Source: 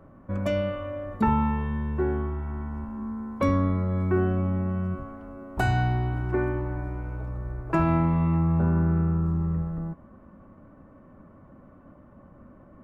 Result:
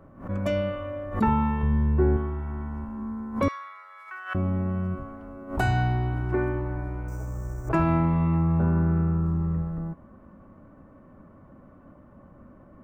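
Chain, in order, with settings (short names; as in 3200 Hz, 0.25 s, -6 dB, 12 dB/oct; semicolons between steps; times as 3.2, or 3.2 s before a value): 1.63–2.17 tilt -2 dB/oct; 3.48–4.35 HPF 1200 Hz 24 dB/oct; 7.08–7.69 careless resampling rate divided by 6×, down filtered, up hold; backwards sustainer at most 140 dB/s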